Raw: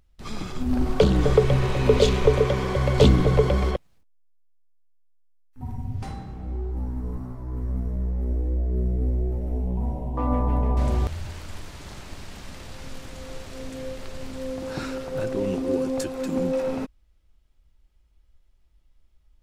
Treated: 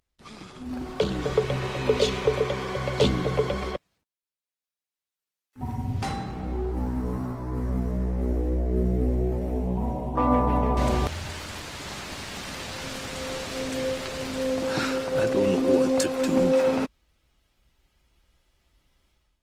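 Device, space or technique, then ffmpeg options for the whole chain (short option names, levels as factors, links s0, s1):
video call: -af "highpass=f=160:p=1,equalizer=f=3100:w=0.35:g=3.5,dynaudnorm=f=830:g=3:m=5.62,volume=0.422" -ar 48000 -c:a libopus -b:a 24k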